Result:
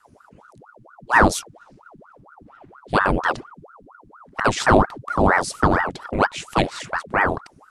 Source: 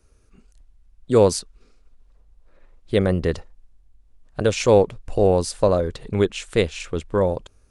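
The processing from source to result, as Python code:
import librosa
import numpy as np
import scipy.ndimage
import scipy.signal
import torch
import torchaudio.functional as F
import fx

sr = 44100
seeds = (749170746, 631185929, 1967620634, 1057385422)

y = fx.dmg_noise_band(x, sr, seeds[0], low_hz=72.0, high_hz=150.0, level_db=-54.0)
y = fx.ring_lfo(y, sr, carrier_hz=770.0, swing_pct=85, hz=4.3)
y = y * 10.0 ** (3.0 / 20.0)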